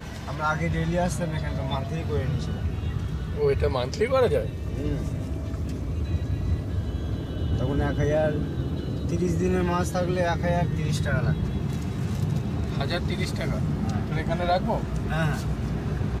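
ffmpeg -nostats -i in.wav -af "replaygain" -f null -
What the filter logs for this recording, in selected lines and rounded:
track_gain = +8.5 dB
track_peak = 0.196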